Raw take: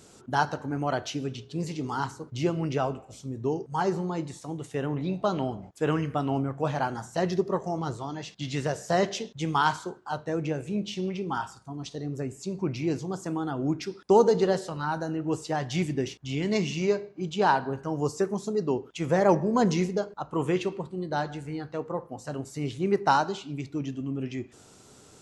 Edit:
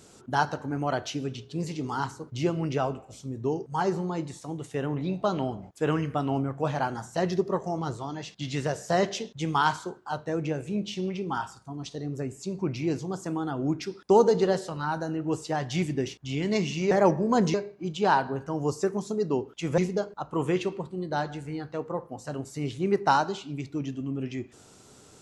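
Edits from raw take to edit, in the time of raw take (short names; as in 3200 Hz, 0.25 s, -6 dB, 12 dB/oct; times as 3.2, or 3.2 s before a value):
19.15–19.78 move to 16.91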